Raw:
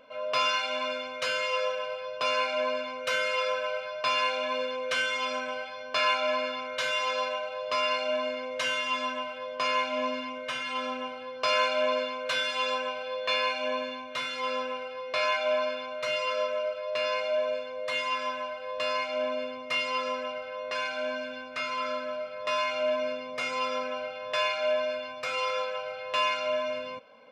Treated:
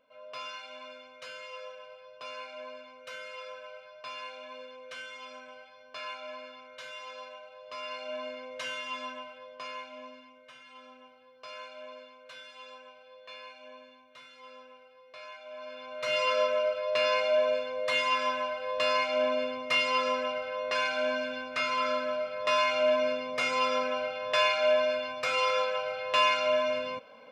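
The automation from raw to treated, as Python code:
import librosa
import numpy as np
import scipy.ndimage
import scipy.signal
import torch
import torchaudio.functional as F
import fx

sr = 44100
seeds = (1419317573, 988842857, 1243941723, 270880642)

y = fx.gain(x, sr, db=fx.line((7.62, -14.5), (8.23, -7.5), (9.09, -7.5), (10.35, -19.0), (15.5, -19.0), (15.77, -9.0), (16.2, 2.5)))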